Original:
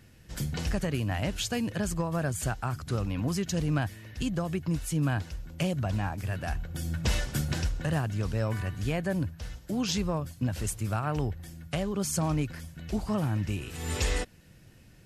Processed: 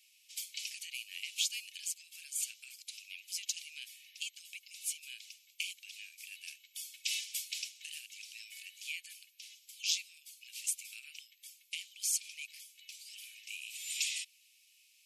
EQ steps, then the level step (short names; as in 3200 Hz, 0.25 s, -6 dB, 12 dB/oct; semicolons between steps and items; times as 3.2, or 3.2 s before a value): Chebyshev high-pass 2300 Hz, order 6; +1.0 dB